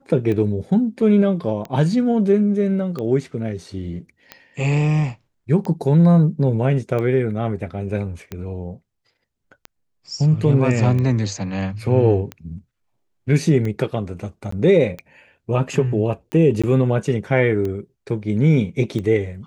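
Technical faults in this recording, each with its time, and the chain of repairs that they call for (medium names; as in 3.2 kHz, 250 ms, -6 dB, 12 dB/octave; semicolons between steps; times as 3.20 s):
tick 45 rpm -16 dBFS
14.51–14.52 s: dropout 14 ms
16.62–16.64 s: dropout 16 ms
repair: de-click; interpolate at 14.51 s, 14 ms; interpolate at 16.62 s, 16 ms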